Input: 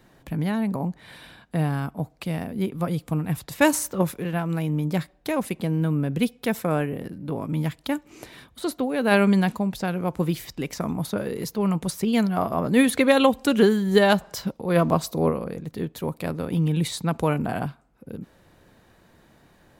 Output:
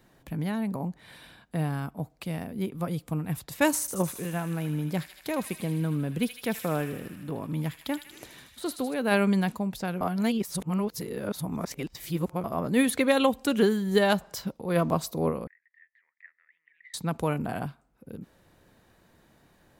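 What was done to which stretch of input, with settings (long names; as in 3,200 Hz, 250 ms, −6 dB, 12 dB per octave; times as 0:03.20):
0:03.80–0:08.94: delay with a high-pass on its return 78 ms, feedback 74%, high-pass 2,100 Hz, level −6 dB
0:10.01–0:12.44: reverse
0:15.47–0:16.94: flat-topped band-pass 1,900 Hz, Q 6.7
whole clip: high-shelf EQ 7,200 Hz +4 dB; level −5 dB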